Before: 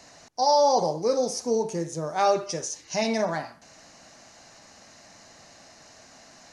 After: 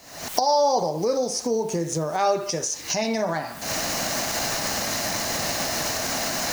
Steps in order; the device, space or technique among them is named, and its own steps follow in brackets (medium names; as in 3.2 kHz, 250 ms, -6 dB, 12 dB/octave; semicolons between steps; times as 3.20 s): cheap recorder with automatic gain (white noise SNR 30 dB; recorder AGC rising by 71 dB/s)